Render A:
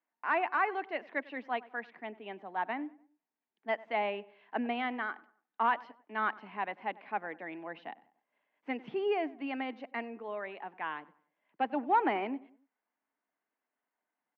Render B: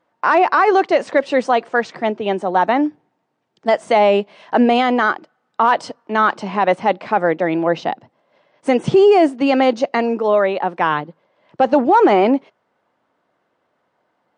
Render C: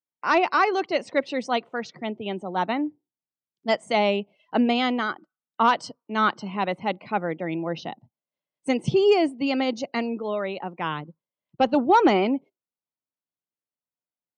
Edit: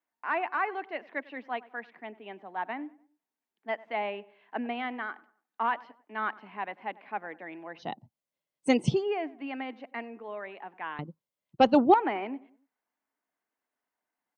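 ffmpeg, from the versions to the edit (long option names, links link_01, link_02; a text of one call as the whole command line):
ffmpeg -i take0.wav -i take1.wav -i take2.wav -filter_complex "[2:a]asplit=2[link_01][link_02];[0:a]asplit=3[link_03][link_04][link_05];[link_03]atrim=end=7.93[link_06];[link_01]atrim=start=7.77:end=9.04[link_07];[link_04]atrim=start=8.88:end=10.992[link_08];[link_02]atrim=start=10.988:end=11.942[link_09];[link_05]atrim=start=11.938[link_10];[link_06][link_07]acrossfade=duration=0.16:curve1=tri:curve2=tri[link_11];[link_11][link_08]acrossfade=duration=0.16:curve1=tri:curve2=tri[link_12];[link_12][link_09]acrossfade=duration=0.004:curve1=hsin:curve2=hsin[link_13];[link_13][link_10]acrossfade=duration=0.004:curve1=hsin:curve2=hsin" out.wav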